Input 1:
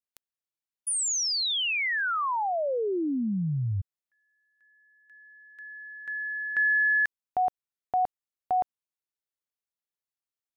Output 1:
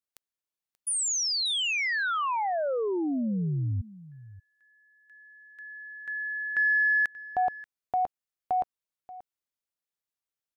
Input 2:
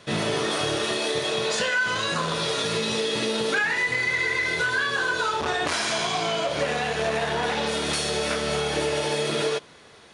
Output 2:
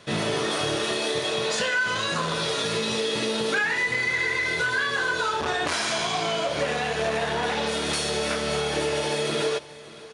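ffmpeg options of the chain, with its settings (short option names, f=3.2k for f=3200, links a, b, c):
-filter_complex "[0:a]acontrast=69,asplit=2[a][b];[b]aecho=0:1:583:0.119[c];[a][c]amix=inputs=2:normalize=0,volume=-7dB"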